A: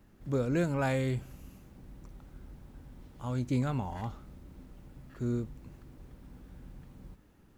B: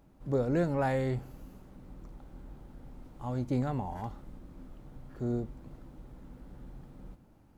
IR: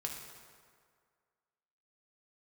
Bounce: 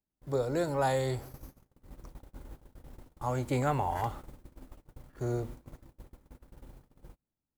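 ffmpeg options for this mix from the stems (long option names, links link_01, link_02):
-filter_complex "[0:a]volume=-4.5dB,asplit=2[link_01][link_02];[link_02]volume=-17dB[link_03];[1:a]highshelf=frequency=6300:gain=11.5,acrossover=split=200|3000[link_04][link_05][link_06];[link_04]acompressor=threshold=-46dB:ratio=5[link_07];[link_07][link_05][link_06]amix=inputs=3:normalize=0,volume=1dB[link_08];[2:a]atrim=start_sample=2205[link_09];[link_03][link_09]afir=irnorm=-1:irlink=0[link_10];[link_01][link_08][link_10]amix=inputs=3:normalize=0,agate=range=-33dB:threshold=-46dB:ratio=16:detection=peak,dynaudnorm=framelen=250:gausssize=9:maxgain=4dB"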